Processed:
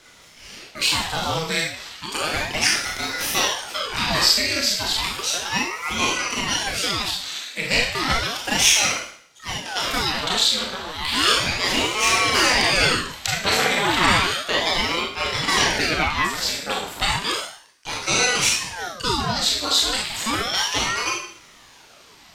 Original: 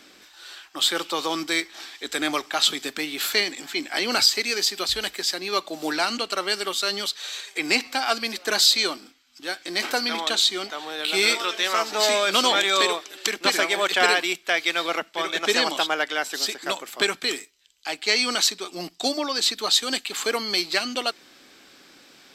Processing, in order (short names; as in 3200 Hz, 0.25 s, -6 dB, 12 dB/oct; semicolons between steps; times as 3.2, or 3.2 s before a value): Schroeder reverb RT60 0.58 s, combs from 25 ms, DRR -2.5 dB; ring modulator with a swept carrier 950 Hz, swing 85%, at 0.33 Hz; gain +1 dB